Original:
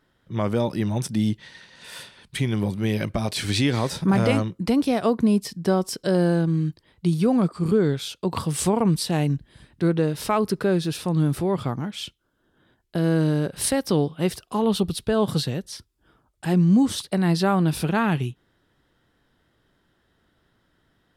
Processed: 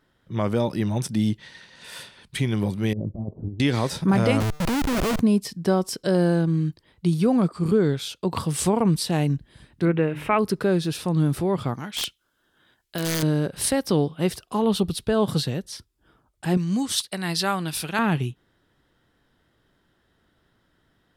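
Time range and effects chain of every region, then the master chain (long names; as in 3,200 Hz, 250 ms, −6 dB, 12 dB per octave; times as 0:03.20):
0:02.93–0:03.60: compressor whose output falls as the input rises −27 dBFS, ratio −0.5 + Gaussian smoothing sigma 15 samples
0:04.40–0:05.20: comparator with hysteresis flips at −29 dBFS + tuned comb filter 150 Hz, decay 1.8 s, mix 40% + leveller curve on the samples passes 3
0:09.85–0:10.39: high shelf with overshoot 3,400 Hz −12 dB, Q 3 + mains-hum notches 50/100/150/200/250/300 Hz
0:11.74–0:13.23: tilt shelving filter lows −7 dB, about 910 Hz + wrap-around overflow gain 18.5 dB
0:16.57–0:17.99: tilt shelving filter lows −7.5 dB, about 1,100 Hz + expander for the loud parts, over −35 dBFS
whole clip: no processing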